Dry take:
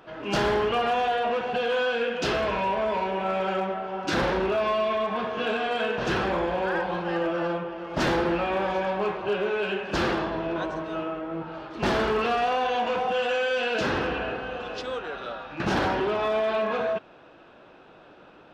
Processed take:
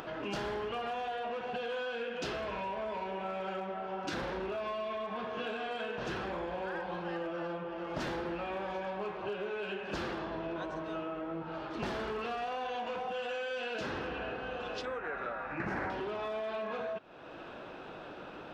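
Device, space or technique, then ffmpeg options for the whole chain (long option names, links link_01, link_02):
upward and downward compression: -filter_complex "[0:a]acompressor=mode=upward:threshold=-39dB:ratio=2.5,acompressor=threshold=-36dB:ratio=5,asettb=1/sr,asplit=3[link_01][link_02][link_03];[link_01]atrim=end=14.854[link_04];[link_02]atrim=start=14.85:end=15.9,asetpts=PTS-STARTPTS,afade=type=in:duration=0.004:curve=qsin,afade=type=out:start_time=1.046:duration=0.004:curve=qsin,highshelf=frequency=2600:width_type=q:width=3:gain=-8[link_05];[link_03]atrim=start=15.896[link_06];[link_04][link_05]acrossfade=duration=0.004:curve1=hsin:curve2=qsin[link_07];[link_07][link_06]acrossfade=duration=0.004:curve1=qsin:curve2=hsin"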